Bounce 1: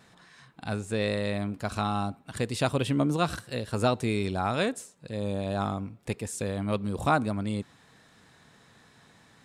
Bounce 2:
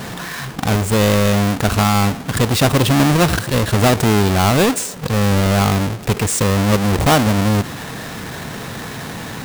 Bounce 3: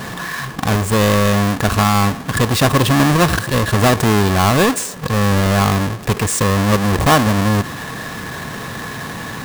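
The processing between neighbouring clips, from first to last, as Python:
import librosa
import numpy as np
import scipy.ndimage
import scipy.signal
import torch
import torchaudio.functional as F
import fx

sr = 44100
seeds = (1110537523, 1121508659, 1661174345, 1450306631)

y1 = fx.halfwave_hold(x, sr)
y1 = fx.env_flatten(y1, sr, amount_pct=50)
y1 = y1 * librosa.db_to_amplitude(6.0)
y2 = fx.small_body(y1, sr, hz=(1100.0, 1700.0), ring_ms=35, db=9)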